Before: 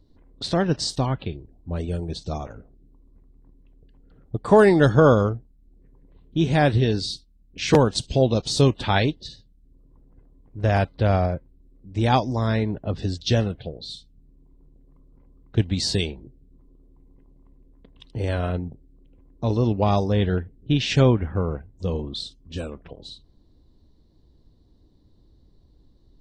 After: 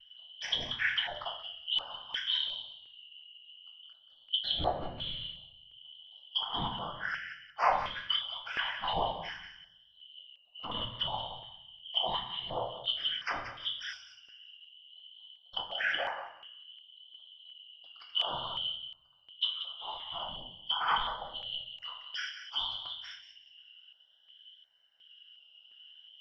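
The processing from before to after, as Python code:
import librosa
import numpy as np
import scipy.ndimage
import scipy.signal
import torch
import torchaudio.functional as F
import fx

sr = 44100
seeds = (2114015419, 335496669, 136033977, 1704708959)

p1 = fx.band_shuffle(x, sr, order='2413')
p2 = 10.0 ** (-11.0 / 20.0) * (np.abs((p1 / 10.0 ** (-11.0 / 20.0) + 3.0) % 4.0 - 2.0) - 1.0)
p3 = p1 + (p2 * 10.0 ** (-8.0 / 20.0))
p4 = fx.low_shelf_res(p3, sr, hz=510.0, db=-11.5, q=3.0)
p5 = fx.env_lowpass_down(p4, sr, base_hz=950.0, full_db=-15.0)
p6 = fx.vibrato(p5, sr, rate_hz=0.54, depth_cents=40.0)
p7 = fx.whisperise(p6, sr, seeds[0])
p8 = fx.air_absorb(p7, sr, metres=340.0)
p9 = p8 + fx.echo_thinned(p8, sr, ms=182, feedback_pct=22, hz=1000.0, wet_db=-9, dry=0)
p10 = fx.room_shoebox(p9, sr, seeds[1], volume_m3=120.0, walls='mixed', distance_m=0.71)
y = fx.filter_held_notch(p10, sr, hz=2.8, low_hz=430.0, high_hz=3300.0)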